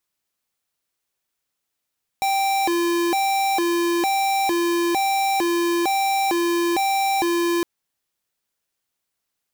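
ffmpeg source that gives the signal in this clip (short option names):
-f lavfi -i "aevalsrc='0.0944*(2*lt(mod((563*t+220/1.1*(0.5-abs(mod(1.1*t,1)-0.5))),1),0.5)-1)':d=5.41:s=44100"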